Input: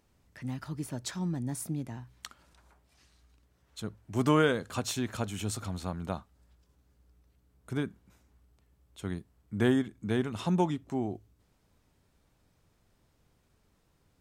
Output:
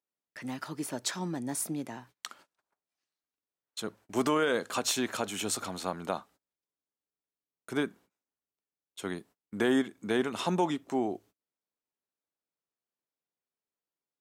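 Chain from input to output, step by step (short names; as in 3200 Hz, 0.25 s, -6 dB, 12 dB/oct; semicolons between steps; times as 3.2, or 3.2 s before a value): HPF 320 Hz 12 dB/oct; gate -60 dBFS, range -30 dB; limiter -23 dBFS, peak gain reduction 9.5 dB; gain +6 dB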